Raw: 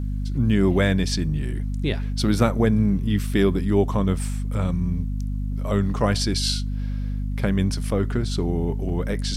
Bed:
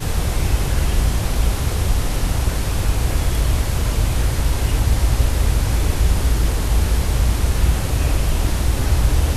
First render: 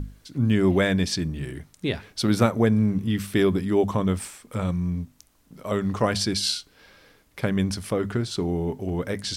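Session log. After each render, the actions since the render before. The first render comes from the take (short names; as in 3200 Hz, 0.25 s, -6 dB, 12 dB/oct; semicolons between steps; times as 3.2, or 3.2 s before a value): notches 50/100/150/200/250 Hz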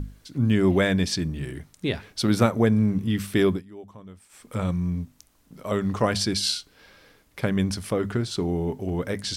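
3.5–4.42 dip -21 dB, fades 0.13 s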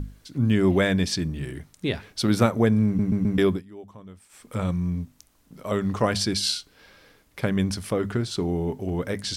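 2.86 stutter in place 0.13 s, 4 plays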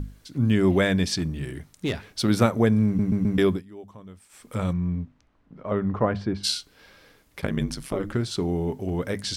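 1.15–2.22 hard clip -20 dBFS; 4.72–6.43 LPF 2800 Hz -> 1200 Hz; 7.41–8.13 ring modulator 25 Hz -> 120 Hz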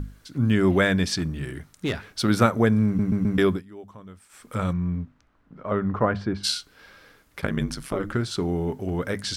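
bell 1400 Hz +6 dB 0.7 oct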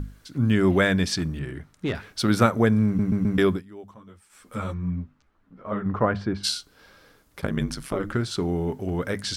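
1.39–1.95 high shelf 4300 Hz -11 dB; 3.94–5.86 ensemble effect; 6.49–7.56 bell 2100 Hz -5.5 dB 1.4 oct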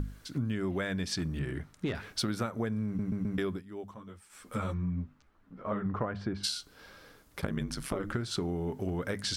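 compressor 12:1, threshold -29 dBFS, peak gain reduction 17 dB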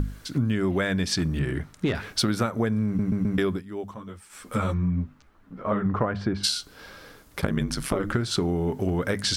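gain +8 dB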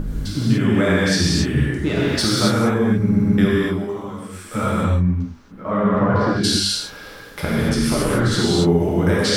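non-linear reverb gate 0.31 s flat, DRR -7.5 dB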